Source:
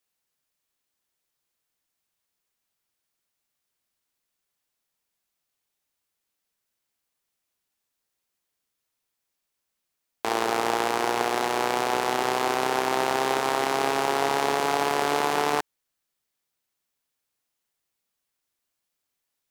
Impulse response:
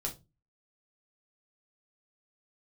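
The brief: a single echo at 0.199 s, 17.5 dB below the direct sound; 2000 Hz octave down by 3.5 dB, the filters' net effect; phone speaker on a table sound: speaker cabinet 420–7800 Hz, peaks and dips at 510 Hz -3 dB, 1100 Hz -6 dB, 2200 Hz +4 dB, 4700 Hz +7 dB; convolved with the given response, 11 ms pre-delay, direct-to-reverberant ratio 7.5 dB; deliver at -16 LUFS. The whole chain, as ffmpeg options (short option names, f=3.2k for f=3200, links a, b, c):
-filter_complex "[0:a]equalizer=f=2k:t=o:g=-6,aecho=1:1:199:0.133,asplit=2[a][b];[1:a]atrim=start_sample=2205,adelay=11[c];[b][c]afir=irnorm=-1:irlink=0,volume=-8.5dB[d];[a][d]amix=inputs=2:normalize=0,highpass=f=420:w=0.5412,highpass=f=420:w=1.3066,equalizer=f=510:t=q:w=4:g=-3,equalizer=f=1.1k:t=q:w=4:g=-6,equalizer=f=2.2k:t=q:w=4:g=4,equalizer=f=4.7k:t=q:w=4:g=7,lowpass=f=7.8k:w=0.5412,lowpass=f=7.8k:w=1.3066,volume=10.5dB"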